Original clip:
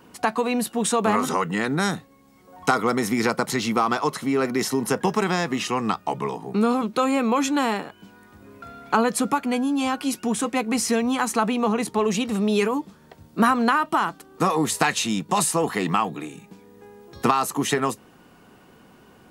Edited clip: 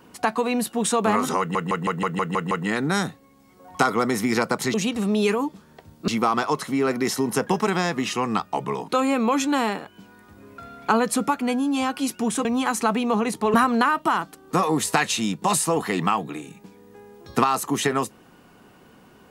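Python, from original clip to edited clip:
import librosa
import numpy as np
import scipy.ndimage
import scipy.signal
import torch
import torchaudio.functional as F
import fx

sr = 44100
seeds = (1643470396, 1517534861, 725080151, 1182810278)

y = fx.edit(x, sr, fx.stutter(start_s=1.39, slice_s=0.16, count=8),
    fx.cut(start_s=6.42, length_s=0.5),
    fx.cut(start_s=10.49, length_s=0.49),
    fx.move(start_s=12.07, length_s=1.34, to_s=3.62), tone=tone)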